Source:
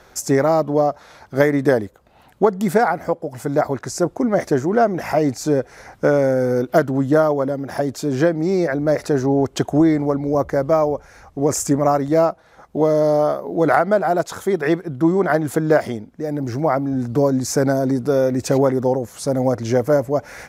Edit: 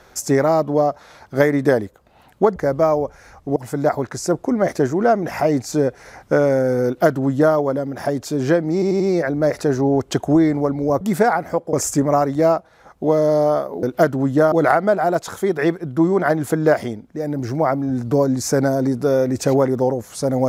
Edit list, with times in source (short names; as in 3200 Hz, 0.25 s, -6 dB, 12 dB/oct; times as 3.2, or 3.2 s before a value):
2.56–3.28 swap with 10.46–11.46
6.58–7.27 copy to 13.56
8.45 stutter 0.09 s, 4 plays